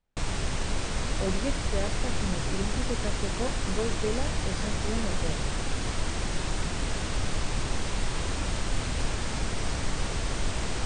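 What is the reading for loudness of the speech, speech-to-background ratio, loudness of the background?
−36.0 LKFS, −4.0 dB, −32.0 LKFS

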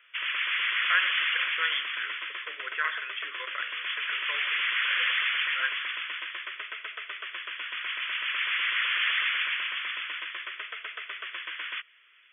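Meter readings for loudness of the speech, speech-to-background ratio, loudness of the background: −33.5 LKFS, −4.5 dB, −29.0 LKFS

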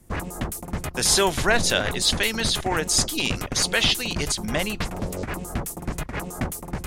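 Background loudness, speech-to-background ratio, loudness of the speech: −31.0 LKFS, 9.0 dB, −22.0 LKFS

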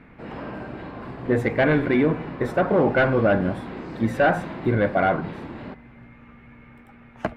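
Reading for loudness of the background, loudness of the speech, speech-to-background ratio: −35.5 LKFS, −22.0 LKFS, 13.5 dB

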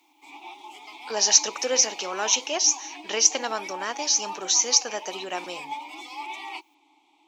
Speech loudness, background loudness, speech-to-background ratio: −22.0 LKFS, −38.5 LKFS, 16.5 dB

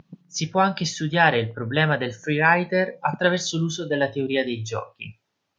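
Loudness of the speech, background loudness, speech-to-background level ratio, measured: −23.0 LKFS, −47.5 LKFS, 24.5 dB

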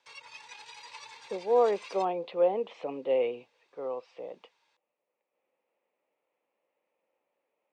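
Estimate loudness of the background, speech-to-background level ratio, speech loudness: −47.0 LKFS, 17.0 dB, −30.0 LKFS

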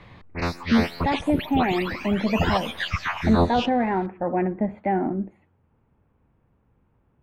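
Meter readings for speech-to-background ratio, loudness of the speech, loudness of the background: 2.5 dB, −25.0 LKFS, −27.5 LKFS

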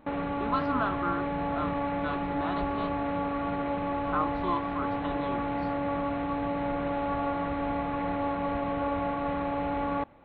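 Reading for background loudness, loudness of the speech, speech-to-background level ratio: −31.0 LKFS, −35.5 LKFS, −4.5 dB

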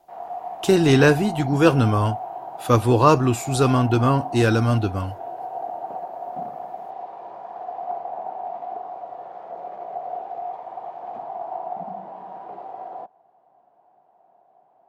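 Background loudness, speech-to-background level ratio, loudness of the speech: −33.5 LKFS, 14.5 dB, −19.0 LKFS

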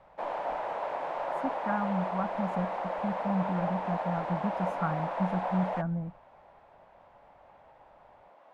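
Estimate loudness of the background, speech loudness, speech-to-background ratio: −34.0 LKFS, −34.0 LKFS, 0.0 dB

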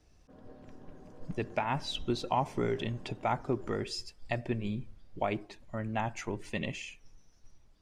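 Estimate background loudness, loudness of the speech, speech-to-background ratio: −54.5 LKFS, −35.5 LKFS, 19.0 dB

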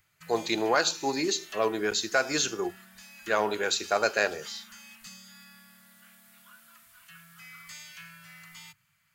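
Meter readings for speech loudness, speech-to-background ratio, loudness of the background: −27.5 LKFS, 19.5 dB, −47.0 LKFS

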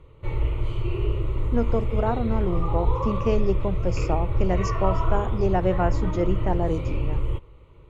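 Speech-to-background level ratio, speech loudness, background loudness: 0.5 dB, −27.5 LKFS, −28.0 LKFS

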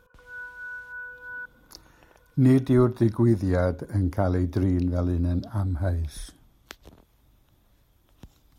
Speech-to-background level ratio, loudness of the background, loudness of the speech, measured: 14.0 dB, −38.5 LKFS, −24.5 LKFS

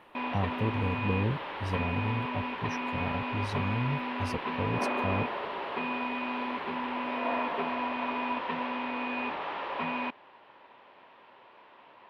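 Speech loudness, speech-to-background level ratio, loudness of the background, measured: −34.5 LKFS, −1.5 dB, −33.0 LKFS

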